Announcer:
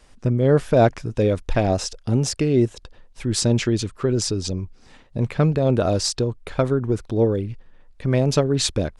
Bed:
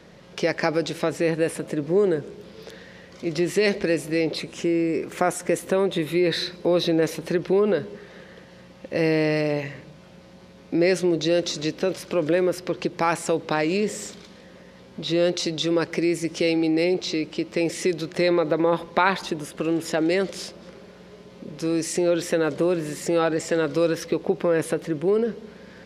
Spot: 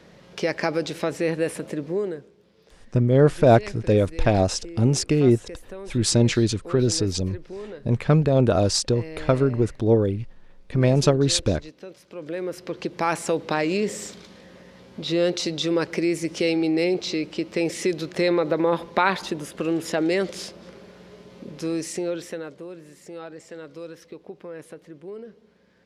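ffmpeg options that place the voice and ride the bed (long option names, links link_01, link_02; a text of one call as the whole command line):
ffmpeg -i stem1.wav -i stem2.wav -filter_complex "[0:a]adelay=2700,volume=0.5dB[link_01];[1:a]volume=14.5dB,afade=type=out:start_time=1.67:duration=0.64:silence=0.177828,afade=type=in:start_time=12.1:duration=1.09:silence=0.158489,afade=type=out:start_time=21.41:duration=1.16:silence=0.158489[link_02];[link_01][link_02]amix=inputs=2:normalize=0" out.wav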